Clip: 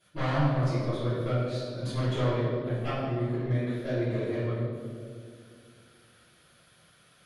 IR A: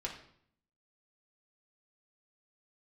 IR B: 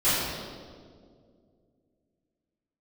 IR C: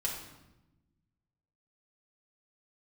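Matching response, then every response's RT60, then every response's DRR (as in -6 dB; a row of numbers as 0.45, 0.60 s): B; 0.65, 2.1, 1.0 s; -2.5, -16.0, -3.5 dB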